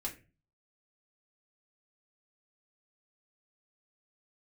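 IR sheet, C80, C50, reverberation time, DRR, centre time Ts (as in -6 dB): 18.0 dB, 12.0 dB, 0.30 s, -3.0 dB, 16 ms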